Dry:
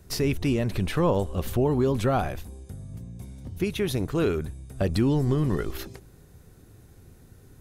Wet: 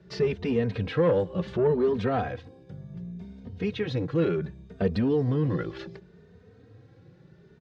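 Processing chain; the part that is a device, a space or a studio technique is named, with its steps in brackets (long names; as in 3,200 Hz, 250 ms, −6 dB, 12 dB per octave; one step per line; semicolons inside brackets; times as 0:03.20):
barber-pole flanger into a guitar amplifier (barber-pole flanger 3 ms +0.68 Hz; soft clipping −20 dBFS, distortion −18 dB; loudspeaker in its box 100–4,500 Hz, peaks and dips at 110 Hz +4 dB, 180 Hz +8 dB, 470 Hz +10 dB, 1,700 Hz +5 dB)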